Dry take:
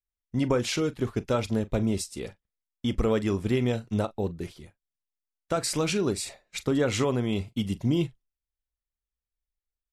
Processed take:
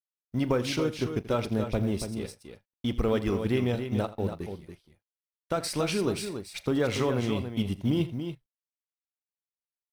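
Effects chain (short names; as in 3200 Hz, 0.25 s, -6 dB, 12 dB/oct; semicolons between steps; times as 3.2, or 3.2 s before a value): G.711 law mismatch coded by A; bell 7200 Hz -10.5 dB 0.27 oct; tapped delay 83/283 ms -16/-8 dB; gain -1 dB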